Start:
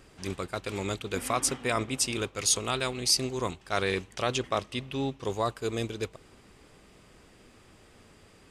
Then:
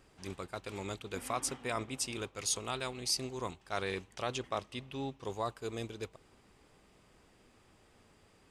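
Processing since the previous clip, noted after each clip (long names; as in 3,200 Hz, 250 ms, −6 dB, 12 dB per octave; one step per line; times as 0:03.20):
parametric band 860 Hz +3.5 dB 0.66 octaves
level −8.5 dB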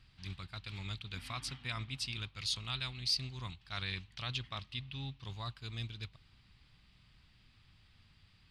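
drawn EQ curve 130 Hz 0 dB, 450 Hz −25 dB, 1,100 Hz −12 dB, 4,300 Hz +2 dB, 6,600 Hz −17 dB
level +4.5 dB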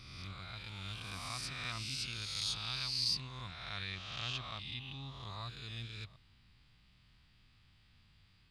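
peak hold with a rise ahead of every peak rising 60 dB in 1.55 s
level −5 dB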